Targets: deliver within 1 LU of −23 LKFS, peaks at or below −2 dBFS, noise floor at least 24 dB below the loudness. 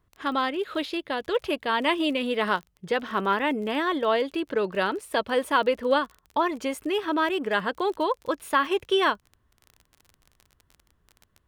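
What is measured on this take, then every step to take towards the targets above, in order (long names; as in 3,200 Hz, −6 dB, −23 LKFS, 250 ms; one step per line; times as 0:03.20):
crackle rate 32 per second; integrated loudness −26.0 LKFS; sample peak −9.0 dBFS; target loudness −23.0 LKFS
→ click removal
level +3 dB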